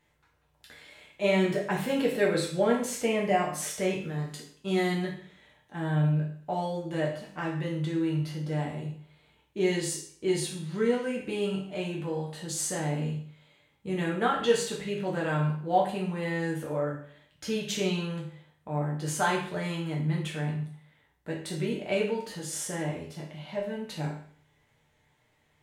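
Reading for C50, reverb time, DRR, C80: 6.0 dB, 0.55 s, -2.5 dB, 9.5 dB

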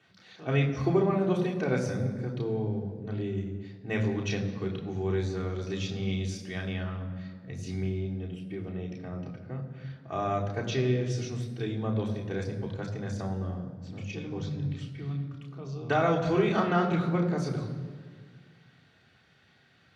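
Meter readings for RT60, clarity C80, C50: 1.8 s, 9.5 dB, 8.5 dB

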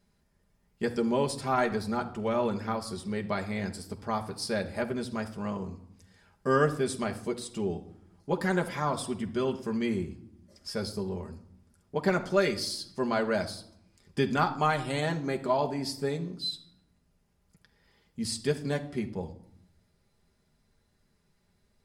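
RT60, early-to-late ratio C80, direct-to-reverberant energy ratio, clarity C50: 0.75 s, 17.0 dB, 3.0 dB, 14.0 dB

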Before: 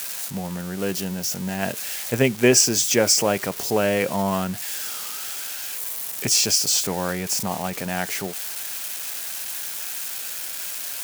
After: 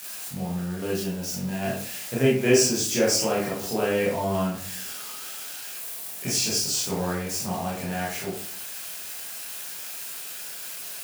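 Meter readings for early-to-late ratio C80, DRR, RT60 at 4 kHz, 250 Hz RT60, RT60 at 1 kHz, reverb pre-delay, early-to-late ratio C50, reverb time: 7.5 dB, -6.5 dB, 0.35 s, 0.65 s, 0.45 s, 19 ms, 3.5 dB, 0.50 s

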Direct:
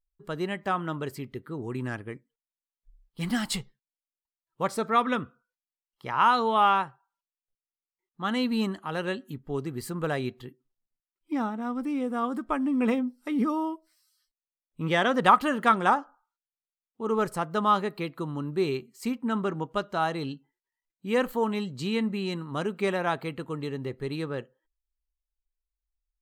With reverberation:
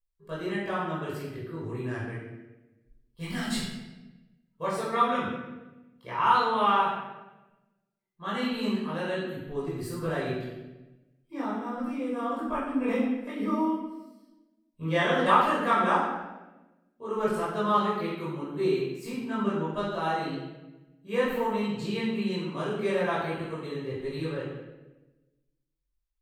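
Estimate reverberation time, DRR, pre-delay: 1.1 s, -8.5 dB, 17 ms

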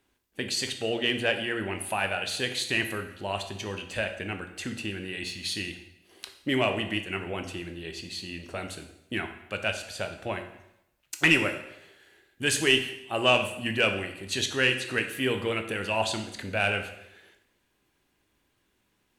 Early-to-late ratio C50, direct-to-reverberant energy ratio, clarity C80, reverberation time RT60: 9.5 dB, 5.5 dB, 12.0 dB, 0.80 s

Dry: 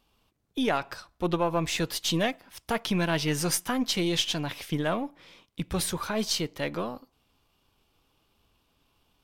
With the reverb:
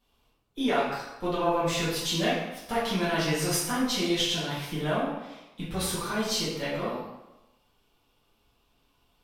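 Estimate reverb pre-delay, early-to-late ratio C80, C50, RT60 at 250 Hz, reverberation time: 3 ms, 4.0 dB, 0.5 dB, 0.90 s, 1.0 s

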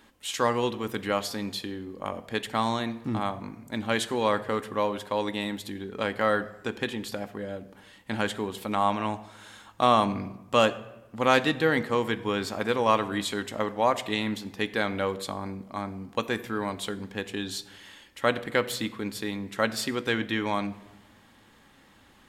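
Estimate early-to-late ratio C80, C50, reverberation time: 18.0 dB, 16.0 dB, 1.0 s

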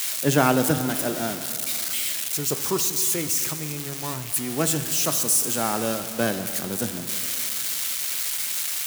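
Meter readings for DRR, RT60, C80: 9.0 dB, 2.9 s, 10.5 dB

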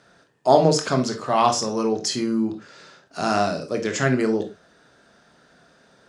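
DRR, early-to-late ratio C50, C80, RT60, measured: 5.0 dB, 10.5 dB, 19.5 dB, no single decay rate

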